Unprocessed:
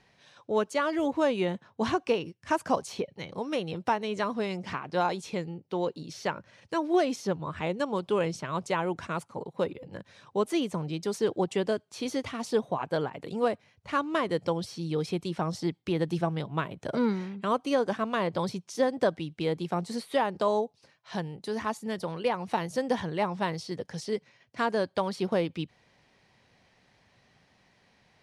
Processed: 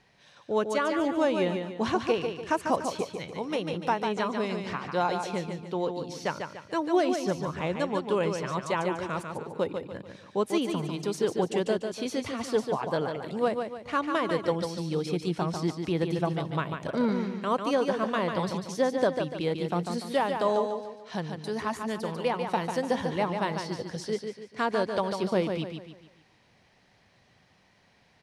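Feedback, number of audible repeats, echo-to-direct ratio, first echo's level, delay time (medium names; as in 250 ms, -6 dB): 40%, 4, -5.0 dB, -6.0 dB, 146 ms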